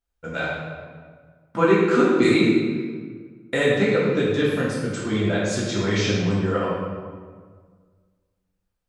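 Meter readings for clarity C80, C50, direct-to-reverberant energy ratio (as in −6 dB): 1.5 dB, −0.5 dB, −8.5 dB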